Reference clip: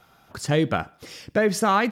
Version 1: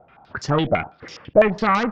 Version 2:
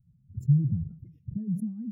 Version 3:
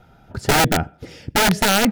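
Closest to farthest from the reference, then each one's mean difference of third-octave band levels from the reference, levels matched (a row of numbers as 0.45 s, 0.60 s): 1, 3, 2; 6.0 dB, 8.5 dB, 19.0 dB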